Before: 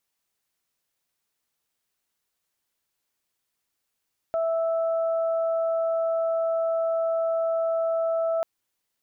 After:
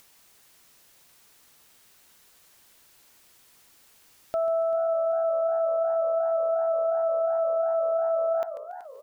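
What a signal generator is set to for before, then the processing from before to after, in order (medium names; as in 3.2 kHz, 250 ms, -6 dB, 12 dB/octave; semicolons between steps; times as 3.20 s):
steady additive tone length 4.09 s, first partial 658 Hz, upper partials -14 dB, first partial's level -22 dB
upward compressor, threshold -40 dBFS; feedback delay 141 ms, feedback 40%, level -13 dB; modulated delay 383 ms, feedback 50%, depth 184 cents, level -15.5 dB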